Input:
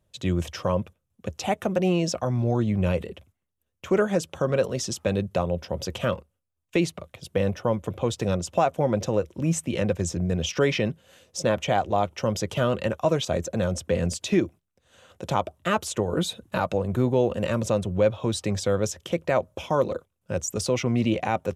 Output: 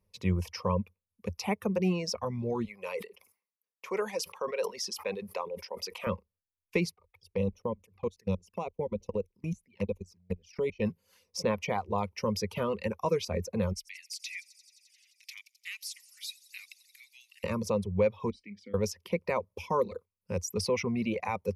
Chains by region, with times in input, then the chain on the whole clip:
2.65–6.07 s: high-pass 560 Hz + decay stretcher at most 120 dB/s
6.94–10.82 s: high-pass 73 Hz + level held to a coarse grid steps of 24 dB + touch-sensitive flanger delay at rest 2.9 ms, full sweep at -27 dBFS
13.73–17.44 s: Chebyshev high-pass 2 kHz, order 5 + feedback echo behind a high-pass 87 ms, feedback 82%, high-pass 5 kHz, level -8.5 dB
18.30–18.74 s: vowel filter i + doubling 39 ms -14 dB
whole clip: reverb removal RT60 0.93 s; rippled EQ curve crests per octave 0.86, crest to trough 12 dB; trim -6.5 dB

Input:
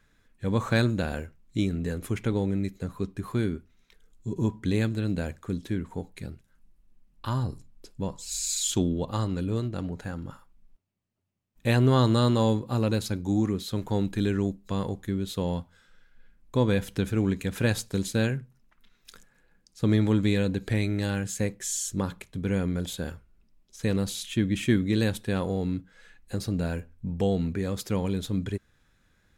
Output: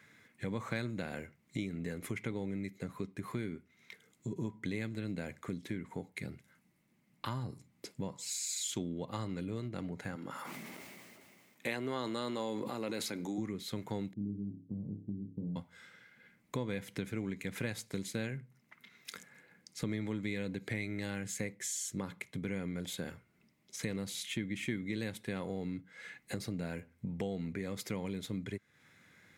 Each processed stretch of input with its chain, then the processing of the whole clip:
10.15–13.38 s: high-pass 270 Hz + decay stretcher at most 23 dB/s
14.13–15.56 s: four-pole ladder low-pass 300 Hz, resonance 35% + flutter echo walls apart 5 m, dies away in 0.37 s
whole clip: high-pass 110 Hz 24 dB/octave; peaking EQ 2.1 kHz +13 dB 0.24 oct; compression 3:1, threshold -44 dBFS; trim +4 dB

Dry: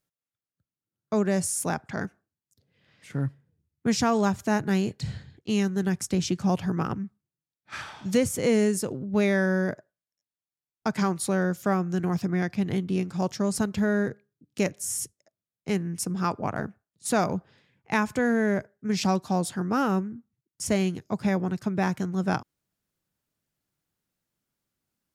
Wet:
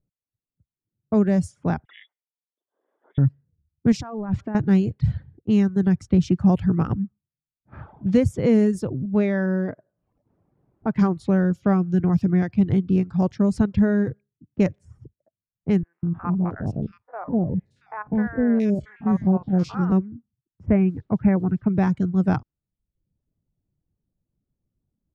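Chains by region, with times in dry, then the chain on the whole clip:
1.85–3.18 s: frequency inversion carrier 3.6 kHz + high-pass 370 Hz 24 dB/octave
3.92–4.55 s: bass shelf 180 Hz -5.5 dB + compressor with a negative ratio -32 dBFS
9.05–10.96 s: high-pass 210 Hz 6 dB/octave + treble shelf 5.4 kHz -11 dB + upward compressor, threshold -33 dBFS
15.83–19.92 s: spectrogram pixelated in time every 50 ms + three bands offset in time mids, lows, highs 200/680 ms, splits 690/2400 Hz
20.65–21.68 s: steep low-pass 2.6 kHz 72 dB/octave + added noise white -66 dBFS
whole clip: RIAA curve playback; level-controlled noise filter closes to 630 Hz, open at -14.5 dBFS; reverb removal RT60 0.61 s

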